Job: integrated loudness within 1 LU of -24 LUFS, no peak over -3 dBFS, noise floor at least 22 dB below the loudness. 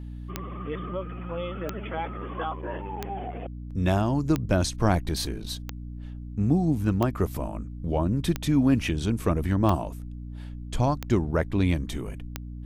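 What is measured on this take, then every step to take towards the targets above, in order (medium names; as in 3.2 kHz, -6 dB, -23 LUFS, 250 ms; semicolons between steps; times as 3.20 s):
clicks found 10; hum 60 Hz; highest harmonic 300 Hz; hum level -35 dBFS; loudness -27.5 LUFS; peak level -8.0 dBFS; loudness target -24.0 LUFS
-> de-click; hum notches 60/120/180/240/300 Hz; trim +3.5 dB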